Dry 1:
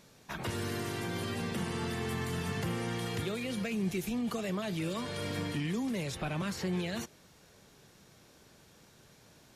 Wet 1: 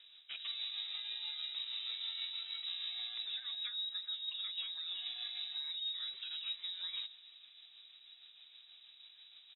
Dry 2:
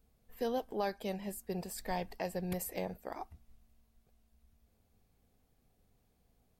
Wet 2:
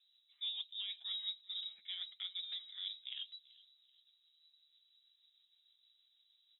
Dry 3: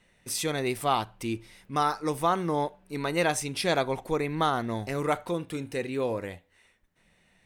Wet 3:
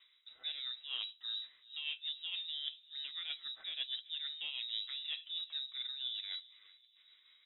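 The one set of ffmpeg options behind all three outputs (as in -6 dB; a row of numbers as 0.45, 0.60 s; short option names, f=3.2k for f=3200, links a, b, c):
-filter_complex "[0:a]highpass=68,bandreject=f=60:t=h:w=6,bandreject=f=120:t=h:w=6,bandreject=f=180:t=h:w=6,bandreject=f=240:t=h:w=6,areverse,acompressor=threshold=-43dB:ratio=6,areverse,flanger=delay=7.7:depth=2.1:regen=-37:speed=0.36:shape=triangular,tremolo=f=6.3:d=0.35,adynamicsmooth=sensitivity=7:basefreq=1.4k,asplit=2[a][b];[b]adelay=384,lowpass=f=1.7k:p=1,volume=-21dB,asplit=2[c][d];[d]adelay=384,lowpass=f=1.7k:p=1,volume=0.41,asplit=2[e][f];[f]adelay=384,lowpass=f=1.7k:p=1,volume=0.41[g];[a][c][e][g]amix=inputs=4:normalize=0,lowpass=f=3.4k:t=q:w=0.5098,lowpass=f=3.4k:t=q:w=0.6013,lowpass=f=3.4k:t=q:w=0.9,lowpass=f=3.4k:t=q:w=2.563,afreqshift=-4000,volume=9dB"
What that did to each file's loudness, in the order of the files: -4.0, -3.0, -10.5 LU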